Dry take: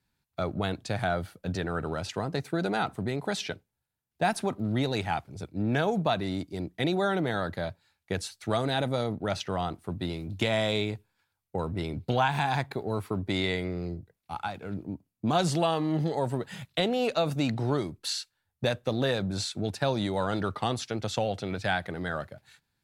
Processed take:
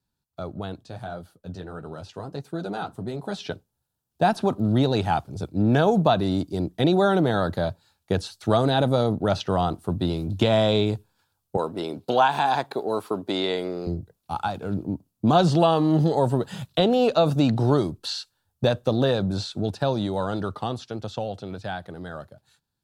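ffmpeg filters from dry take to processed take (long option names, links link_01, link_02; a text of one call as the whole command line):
ffmpeg -i in.wav -filter_complex "[0:a]asplit=3[link_01][link_02][link_03];[link_01]afade=type=out:start_time=0.82:duration=0.02[link_04];[link_02]flanger=delay=4.2:depth=8.2:regen=-40:speed=1.6:shape=triangular,afade=type=in:start_time=0.82:duration=0.02,afade=type=out:start_time=3.44:duration=0.02[link_05];[link_03]afade=type=in:start_time=3.44:duration=0.02[link_06];[link_04][link_05][link_06]amix=inputs=3:normalize=0,asettb=1/sr,asplit=3[link_07][link_08][link_09];[link_07]atrim=end=11.574[link_10];[link_08]atrim=start=11.57:end=13.87,asetpts=PTS-STARTPTS,afade=type=in:duration=0.004:curve=qsin,afade=type=out:start_time=2.296:duration=0.004:curve=qsin,highpass=330[link_11];[link_09]atrim=start=13.866[link_12];[link_10][link_11]acrossfade=duration=0.004:curve1=hsin:curve2=qsin[link_13];[link_13][link_12]acrossfade=duration=0.004:curve1=qsin:curve2=hsin,acrossover=split=4600[link_14][link_15];[link_15]acompressor=threshold=-54dB:ratio=4:attack=1:release=60[link_16];[link_14][link_16]amix=inputs=2:normalize=0,equalizer=frequency=2100:width=2.2:gain=-13,dynaudnorm=framelen=210:gausssize=31:maxgain=11.5dB,volume=-2.5dB" out.wav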